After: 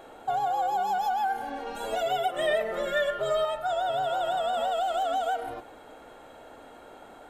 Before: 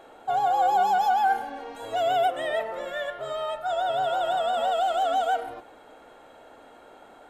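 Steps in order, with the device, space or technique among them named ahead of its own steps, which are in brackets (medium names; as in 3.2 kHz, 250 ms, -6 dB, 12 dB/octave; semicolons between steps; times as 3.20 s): ASMR close-microphone chain (bass shelf 200 Hz +5.5 dB; compression, threshold -26 dBFS, peak gain reduction 8 dB; treble shelf 8.3 kHz +5 dB); 1.66–3.45 s: comb 5 ms, depth 96%; trim +1 dB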